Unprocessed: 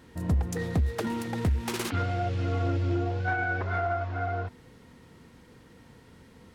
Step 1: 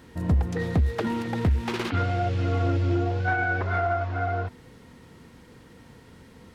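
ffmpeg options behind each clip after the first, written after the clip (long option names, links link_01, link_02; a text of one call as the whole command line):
ffmpeg -i in.wav -filter_complex "[0:a]acrossover=split=4600[link_01][link_02];[link_02]acompressor=threshold=-56dB:ratio=4:attack=1:release=60[link_03];[link_01][link_03]amix=inputs=2:normalize=0,volume=3.5dB" out.wav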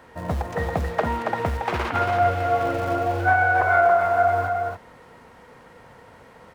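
ffmpeg -i in.wav -filter_complex "[0:a]firequalizer=gain_entry='entry(300,0);entry(600,15);entry(3600,2)':delay=0.05:min_phase=1,acrossover=split=180[link_01][link_02];[link_01]acrusher=bits=2:mode=log:mix=0:aa=0.000001[link_03];[link_03][link_02]amix=inputs=2:normalize=0,aecho=1:1:278:0.631,volume=-5.5dB" out.wav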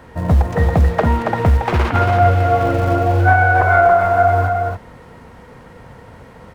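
ffmpeg -i in.wav -af "lowshelf=frequency=230:gain=11.5,volume=4.5dB" out.wav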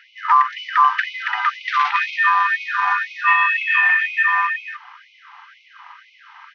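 ffmpeg -i in.wav -af "aresample=11025,aresample=44100,aeval=exprs='val(0)*sin(2*PI*1100*n/s)':channel_layout=same,afftfilt=real='re*gte(b*sr/1024,700*pow(2100/700,0.5+0.5*sin(2*PI*2*pts/sr)))':imag='im*gte(b*sr/1024,700*pow(2100/700,0.5+0.5*sin(2*PI*2*pts/sr)))':win_size=1024:overlap=0.75,volume=1.5dB" out.wav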